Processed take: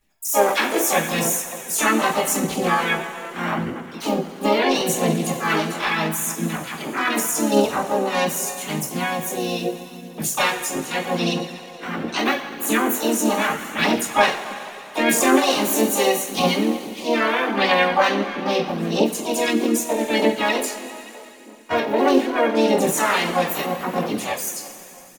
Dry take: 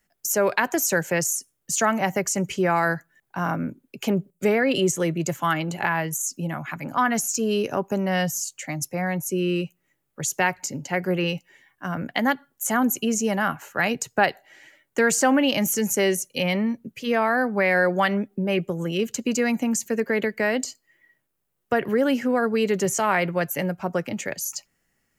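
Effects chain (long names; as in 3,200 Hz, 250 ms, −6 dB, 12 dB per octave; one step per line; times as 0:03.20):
coupled-rooms reverb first 0.29 s, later 3.2 s, from −18 dB, DRR −7.5 dB
phase shifter 0.79 Hz, delay 3.8 ms, feedback 42%
on a send: single-tap delay 86 ms −22 dB
on the sum: pitch-shifted copies added +5 semitones −2 dB, +7 semitones −6 dB, +12 semitones −6 dB
level −9 dB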